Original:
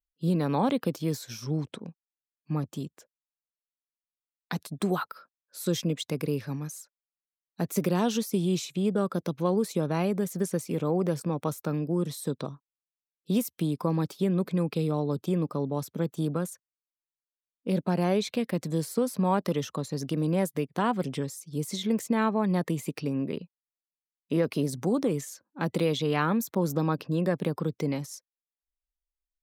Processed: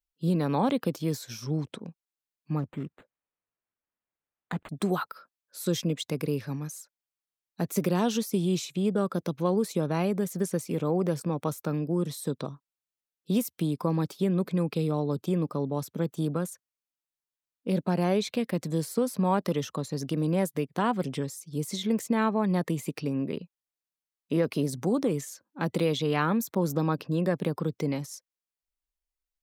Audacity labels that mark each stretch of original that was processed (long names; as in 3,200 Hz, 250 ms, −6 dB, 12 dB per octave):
2.590000	4.690000	linearly interpolated sample-rate reduction rate divided by 8×